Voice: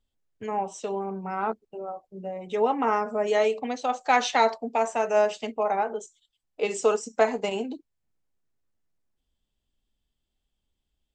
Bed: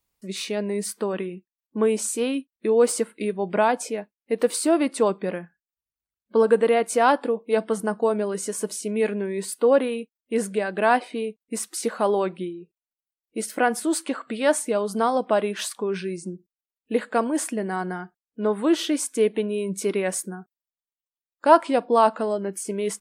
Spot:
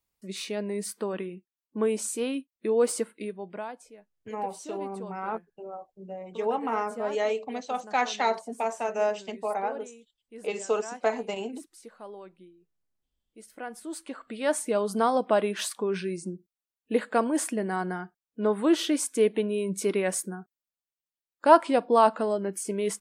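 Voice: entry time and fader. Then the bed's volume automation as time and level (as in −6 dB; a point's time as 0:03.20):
3.85 s, −4.5 dB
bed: 0:03.09 −5 dB
0:03.85 −21.5 dB
0:13.32 −21.5 dB
0:14.78 −2 dB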